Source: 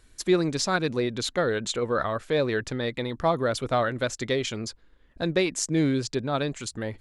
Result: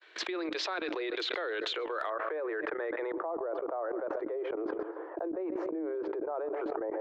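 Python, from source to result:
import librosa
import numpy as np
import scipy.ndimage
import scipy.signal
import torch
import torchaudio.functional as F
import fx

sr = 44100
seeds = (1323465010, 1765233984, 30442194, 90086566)

y = fx.fade_in_head(x, sr, length_s=0.79)
y = scipy.signal.sosfilt(scipy.signal.cheby1(10, 1.0, 310.0, 'highpass', fs=sr, output='sos'), y)
y = fx.low_shelf(y, sr, hz=420.0, db=-10.5)
y = fx.echo_feedback(y, sr, ms=127, feedback_pct=40, wet_db=-23.0)
y = fx.level_steps(y, sr, step_db=20)
y = fx.lowpass(y, sr, hz=fx.steps((0.0, 3500.0), (2.1, 1600.0), (3.12, 1000.0)), slope=24)
y = np.clip(10.0 ** (29.5 / 20.0) * y, -1.0, 1.0) / 10.0 ** (29.5 / 20.0)
y = fx.env_flatten(y, sr, amount_pct=100)
y = y * 10.0 ** (5.0 / 20.0)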